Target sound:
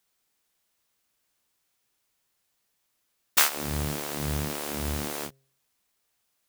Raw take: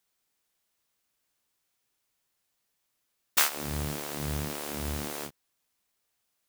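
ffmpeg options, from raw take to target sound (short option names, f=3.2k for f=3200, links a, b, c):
-af "bandreject=f=134.6:t=h:w=4,bandreject=f=269.2:t=h:w=4,bandreject=f=403.8:t=h:w=4,bandreject=f=538.4:t=h:w=4,bandreject=f=673:t=h:w=4,volume=3dB"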